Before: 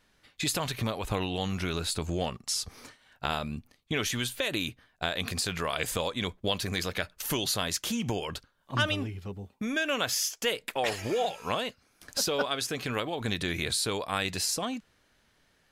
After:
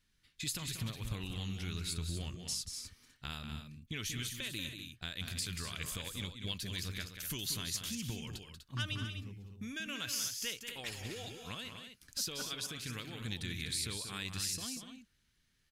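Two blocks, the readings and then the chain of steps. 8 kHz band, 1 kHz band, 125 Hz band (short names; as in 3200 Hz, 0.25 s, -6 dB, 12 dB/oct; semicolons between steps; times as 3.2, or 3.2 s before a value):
-6.0 dB, -17.5 dB, -5.5 dB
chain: passive tone stack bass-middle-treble 6-0-2; loudspeakers at several distances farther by 64 m -8 dB, 85 m -9 dB; gain +7.5 dB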